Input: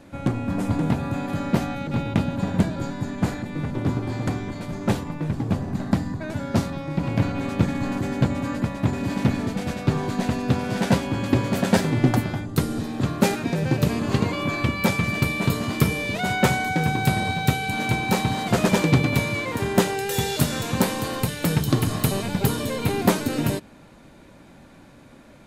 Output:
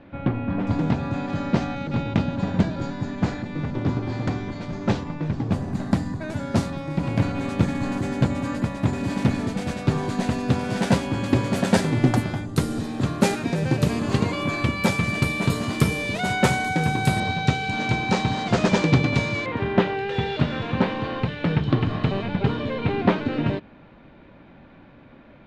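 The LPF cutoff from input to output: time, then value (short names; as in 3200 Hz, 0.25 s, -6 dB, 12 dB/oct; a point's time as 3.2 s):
LPF 24 dB/oct
3300 Hz
from 0.67 s 6100 Hz
from 5.52 s 11000 Hz
from 17.2 s 6400 Hz
from 19.46 s 3300 Hz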